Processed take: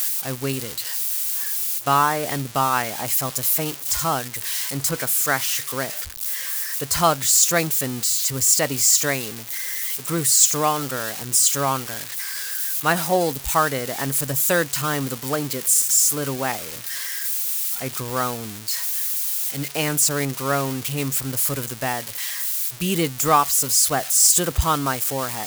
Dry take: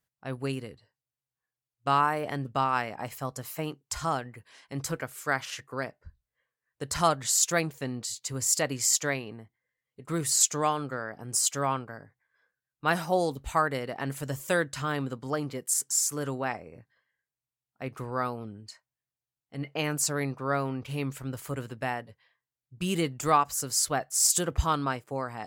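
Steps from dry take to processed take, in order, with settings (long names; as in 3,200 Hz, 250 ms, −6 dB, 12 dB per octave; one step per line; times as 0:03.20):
spike at every zero crossing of −23 dBFS
level +6 dB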